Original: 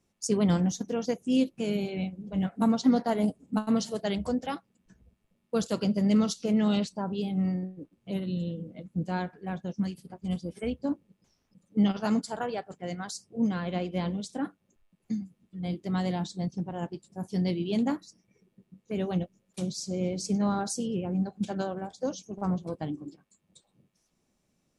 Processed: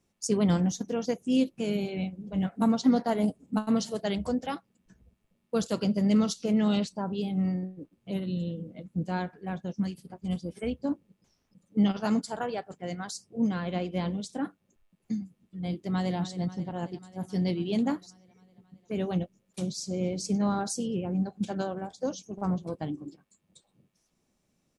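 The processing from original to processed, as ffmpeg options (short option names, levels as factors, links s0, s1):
-filter_complex "[0:a]asplit=2[s0][s1];[s1]afade=t=in:st=15.76:d=0.01,afade=t=out:st=16.17:d=0.01,aecho=0:1:270|540|810|1080|1350|1620|1890|2160|2430|2700|2970:0.199526|0.149645|0.112234|0.0841751|0.0631313|0.0473485|0.0355114|0.0266335|0.0199752|0.0149814|0.011236[s2];[s0][s2]amix=inputs=2:normalize=0"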